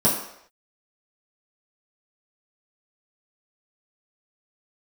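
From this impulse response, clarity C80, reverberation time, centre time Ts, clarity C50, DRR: 7.5 dB, no single decay rate, 39 ms, 5.0 dB, -8.0 dB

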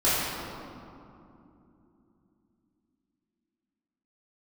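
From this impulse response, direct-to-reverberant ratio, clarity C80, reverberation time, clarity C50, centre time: -15.5 dB, -1.0 dB, 2.9 s, -3.0 dB, 160 ms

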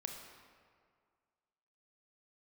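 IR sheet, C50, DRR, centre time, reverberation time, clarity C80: 4.0 dB, 2.5 dB, 54 ms, 2.0 s, 5.5 dB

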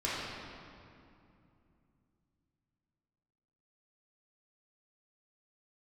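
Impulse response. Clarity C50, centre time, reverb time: -3.0 dB, 145 ms, 2.6 s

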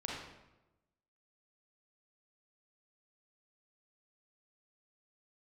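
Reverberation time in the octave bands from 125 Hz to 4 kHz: 1.2 s, 1.1 s, 1.1 s, 0.95 s, 0.85 s, 0.70 s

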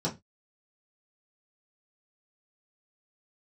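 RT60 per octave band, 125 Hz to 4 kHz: 0.30 s, 0.25 s, 0.20 s, 0.20 s, 0.20 s, 0.20 s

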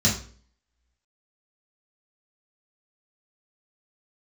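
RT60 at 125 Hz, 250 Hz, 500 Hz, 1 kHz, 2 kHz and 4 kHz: 0.50 s, 0.50 s, 0.50 s, 0.40 s, 0.40 s, 0.40 s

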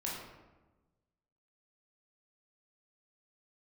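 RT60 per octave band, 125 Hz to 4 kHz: 1.6 s, 1.4 s, 1.2 s, 1.1 s, 0.90 s, 0.65 s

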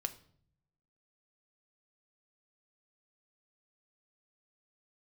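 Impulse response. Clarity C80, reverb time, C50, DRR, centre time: 19.5 dB, 0.60 s, 16.0 dB, 8.0 dB, 6 ms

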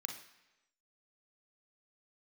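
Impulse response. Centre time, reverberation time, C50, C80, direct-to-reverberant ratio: 23 ms, 1.0 s, 7.0 dB, 11.0 dB, 3.5 dB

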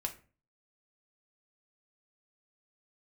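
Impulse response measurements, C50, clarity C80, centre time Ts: 13.5 dB, 18.5 dB, 8 ms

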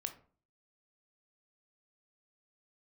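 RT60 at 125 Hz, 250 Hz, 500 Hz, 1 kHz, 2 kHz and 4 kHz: 0.55 s, 0.55 s, 0.45 s, 0.40 s, 0.35 s, 0.25 s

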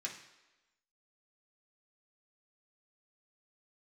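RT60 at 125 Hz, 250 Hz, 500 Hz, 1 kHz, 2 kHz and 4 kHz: 0.60 s, 0.95 s, 1.1 s, 1.1 s, 1.1 s, 1.0 s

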